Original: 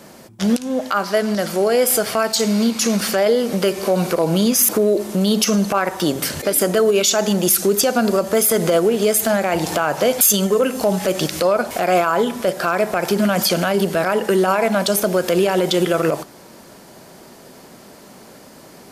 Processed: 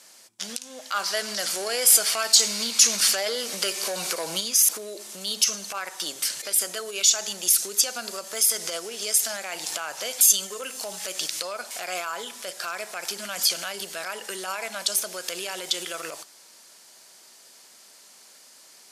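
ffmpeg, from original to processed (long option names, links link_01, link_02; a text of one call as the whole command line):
ffmpeg -i in.wav -filter_complex "[0:a]asplit=3[link_01][link_02][link_03];[link_01]afade=type=out:start_time=0.92:duration=0.02[link_04];[link_02]acontrast=73,afade=type=in:start_time=0.92:duration=0.02,afade=type=out:start_time=4.39:duration=0.02[link_05];[link_03]afade=type=in:start_time=4.39:duration=0.02[link_06];[link_04][link_05][link_06]amix=inputs=3:normalize=0,asettb=1/sr,asplit=3[link_07][link_08][link_09];[link_07]atrim=end=8.404[link_10];[link_08]atrim=start=8.4:end=9.37,asetpts=PTS-STARTPTS,afade=type=in:duration=0.004:curve=qsin,afade=type=out:start_time=0.966:duration=0.004:curve=qsin,equalizer=frequency=5400:width_type=o:width=0.32:gain=6[link_11];[link_09]atrim=start=9.366[link_12];[link_10][link_11]acrossfade=duration=0.004:curve1=hsin:curve2=qsin[link_13];[link_13][link_12]acrossfade=duration=0.004:curve1=qsin:curve2=hsin,lowpass=7800,aderivative,volume=2.5dB" out.wav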